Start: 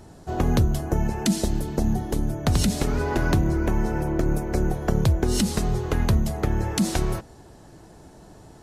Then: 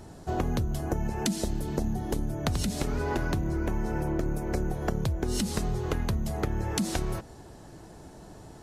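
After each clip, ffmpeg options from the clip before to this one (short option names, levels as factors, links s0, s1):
-af "acompressor=threshold=0.0562:ratio=6"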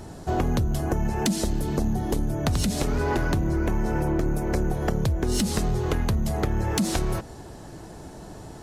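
-filter_complex "[0:a]aeval=exprs='0.237*(cos(1*acos(clip(val(0)/0.237,-1,1)))-cos(1*PI/2))+0.0188*(cos(5*acos(clip(val(0)/0.237,-1,1)))-cos(5*PI/2))':c=same,asplit=2[s0][s1];[s1]asoftclip=type=tanh:threshold=0.0708,volume=0.473[s2];[s0][s2]amix=inputs=2:normalize=0"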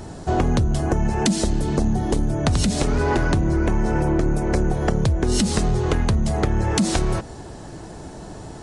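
-af "aresample=22050,aresample=44100,volume=1.68"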